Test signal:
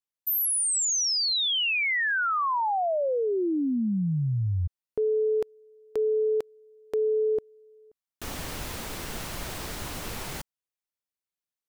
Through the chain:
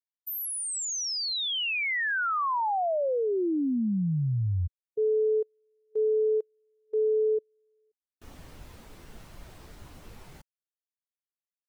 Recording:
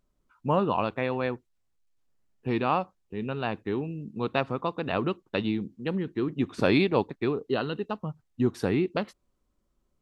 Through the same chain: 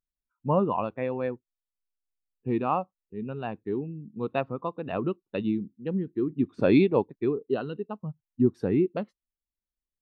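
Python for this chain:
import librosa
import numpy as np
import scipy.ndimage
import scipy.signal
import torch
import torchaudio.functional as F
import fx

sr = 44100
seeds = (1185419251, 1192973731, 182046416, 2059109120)

y = fx.spectral_expand(x, sr, expansion=1.5)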